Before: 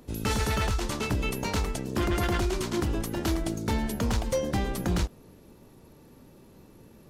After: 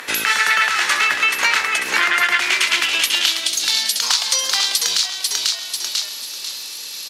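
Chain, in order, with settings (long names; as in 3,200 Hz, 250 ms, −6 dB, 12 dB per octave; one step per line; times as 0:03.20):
0:04.02–0:04.61: parametric band 1,100 Hz +12 dB 1.2 octaves
echo with shifted repeats 493 ms, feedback 32%, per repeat −57 Hz, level −9 dB
band-pass filter sweep 1,800 Hz → 4,400 Hz, 0:02.17–0:03.83
spectral tilt +4 dB per octave
downward compressor 4 to 1, threshold −50 dBFS, peak gain reduction 18 dB
boost into a limiter +36 dB
level −2.5 dB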